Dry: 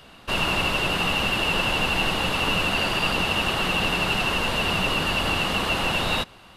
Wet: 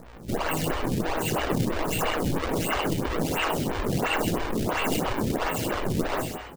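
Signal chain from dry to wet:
hum with harmonics 60 Hz, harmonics 4, −39 dBFS −5 dB per octave
in parallel at −10 dB: sine wavefolder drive 13 dB, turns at −8.5 dBFS
on the sum: tuned comb filter 160 Hz, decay 0.55 s, harmonics all, mix 90%
sample-and-hold swept by an LFO 38×, swing 160% 1.4 Hz
echo with shifted repeats 128 ms, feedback 30%, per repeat +99 Hz, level −6 dB
phaser with staggered stages 3 Hz
level +5 dB

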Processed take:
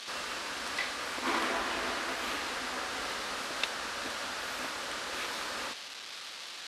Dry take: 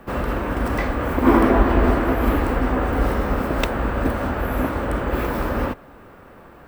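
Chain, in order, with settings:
linear delta modulator 64 kbit/s, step −30.5 dBFS
resonant band-pass 4,100 Hz, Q 1.6
level +4 dB

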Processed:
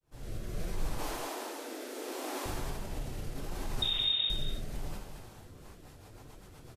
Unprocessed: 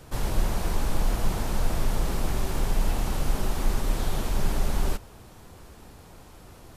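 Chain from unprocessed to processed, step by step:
fade in at the beginning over 0.61 s
0:00.98–0:02.46: Butterworth high-pass 250 Hz 96 dB per octave
brickwall limiter −23 dBFS, peak gain reduction 10.5 dB
flanger 1.4 Hz, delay 5 ms, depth 4.6 ms, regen +52%
0:03.82–0:04.30: voice inversion scrambler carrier 3,700 Hz
single-tap delay 224 ms −8.5 dB
reverb whose tail is shaped and stops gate 110 ms flat, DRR 3.5 dB
rotating-speaker cabinet horn 0.7 Hz, later 8 Hz, at 0:05.23

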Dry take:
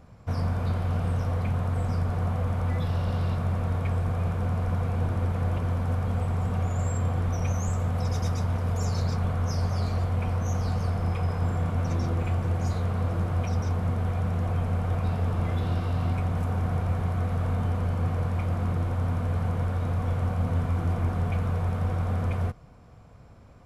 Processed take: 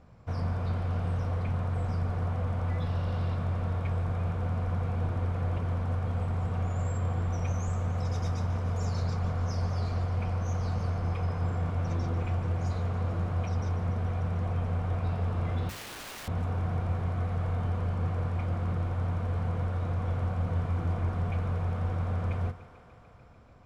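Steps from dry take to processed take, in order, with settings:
high-frequency loss of the air 54 metres
feedback echo with a high-pass in the loop 147 ms, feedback 81%, high-pass 210 Hz, level −15 dB
0:15.69–0:16.28: wrap-around overflow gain 34 dB
mains-hum notches 50/100/150/200/250 Hz
level −3.5 dB

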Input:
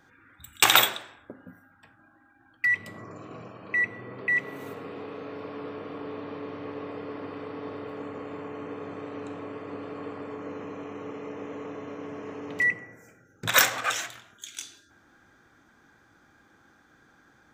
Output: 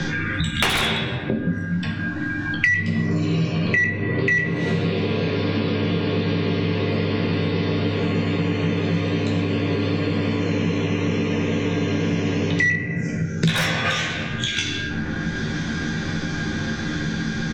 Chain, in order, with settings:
rectangular room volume 240 cubic metres, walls mixed, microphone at 0.91 metres
in parallel at 0 dB: downward compressor, threshold −40 dBFS, peak gain reduction 25 dB
on the sum: low-pass filter 5,400 Hz 24 dB per octave
parametric band 980 Hz −14.5 dB 2 octaves
notch filter 1,300 Hz, Q 8.8
on a send: ambience of single reflections 13 ms −4.5 dB, 23 ms −7 dB
on the sum: sine wavefolder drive 12 dB, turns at −7 dBFS
thirty-one-band graphic EQ 160 Hz +6 dB, 315 Hz −4 dB, 630 Hz −4 dB
multiband upward and downward compressor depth 100%
level −2 dB

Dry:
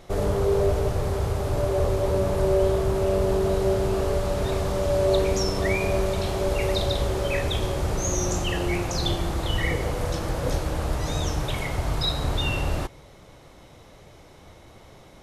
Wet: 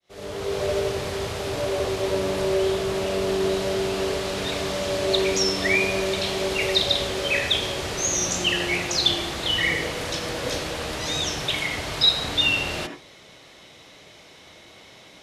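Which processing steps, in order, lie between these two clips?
fade in at the beginning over 0.66 s
meter weighting curve D
on a send: convolution reverb RT60 0.25 s, pre-delay 74 ms, DRR 6.5 dB
on the sum: level −1.5 dB

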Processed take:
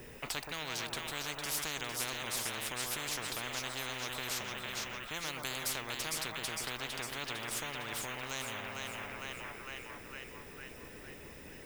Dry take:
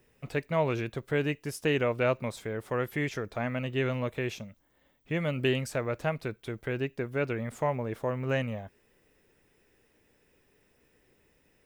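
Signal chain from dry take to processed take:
on a send: echo with a time of its own for lows and highs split 1,100 Hz, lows 125 ms, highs 455 ms, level −8 dB
on the sum: every bin compressed towards the loudest bin 10 to 1
level −6.5 dB

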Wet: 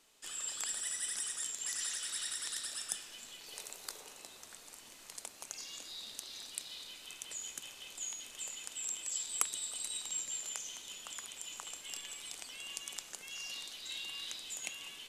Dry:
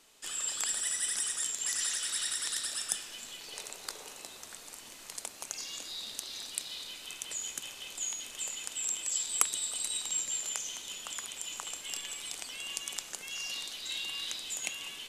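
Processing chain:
0:03.46–0:04.01: high-shelf EQ 12,000 Hz +10.5 dB
level −5.5 dB

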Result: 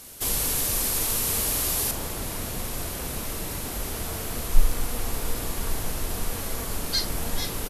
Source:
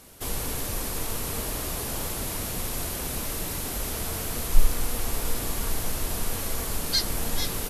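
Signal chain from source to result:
high-shelf EQ 2,700 Hz +8.5 dB, from 0:01.91 −2 dB
double-tracking delay 45 ms −11.5 dB

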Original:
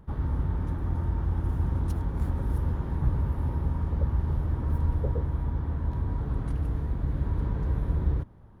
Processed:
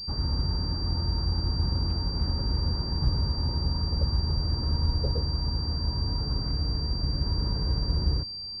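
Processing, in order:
switching amplifier with a slow clock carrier 4,700 Hz

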